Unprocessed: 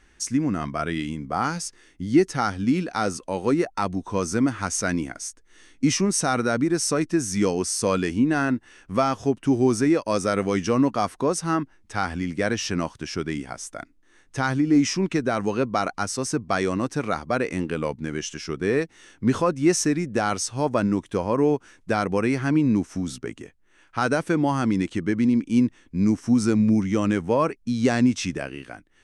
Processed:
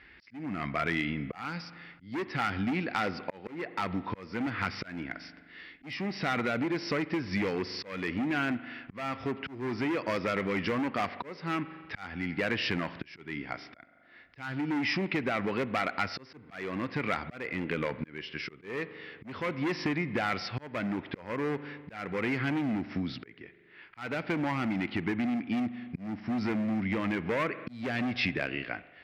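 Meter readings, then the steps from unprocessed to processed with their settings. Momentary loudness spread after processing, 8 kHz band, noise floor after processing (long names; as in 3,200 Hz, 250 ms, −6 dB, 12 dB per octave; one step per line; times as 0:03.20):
11 LU, −26.5 dB, −56 dBFS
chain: downsampling to 11,025 Hz
hard clipping −20.5 dBFS, distortion −9 dB
spring reverb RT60 1.3 s, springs 41 ms, chirp 50 ms, DRR 16 dB
volume swells 579 ms
high-pass filter 69 Hz
downward compressor 4 to 1, threshold −29 dBFS, peak gain reduction 8 dB
parametric band 2,100 Hz +11 dB 0.7 octaves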